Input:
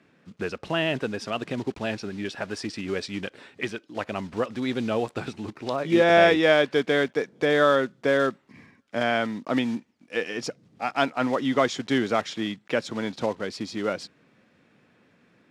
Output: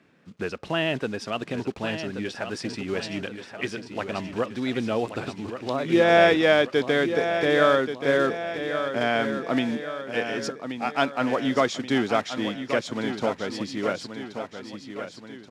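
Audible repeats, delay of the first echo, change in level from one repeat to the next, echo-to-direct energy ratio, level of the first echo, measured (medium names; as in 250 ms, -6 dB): 3, 1129 ms, -5.5 dB, -7.5 dB, -9.0 dB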